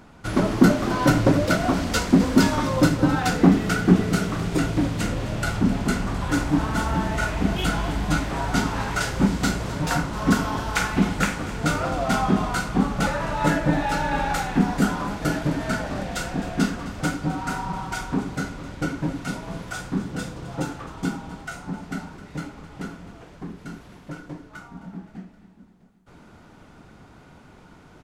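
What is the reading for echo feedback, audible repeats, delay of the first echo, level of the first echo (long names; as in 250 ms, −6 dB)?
56%, 4, 261 ms, −16.0 dB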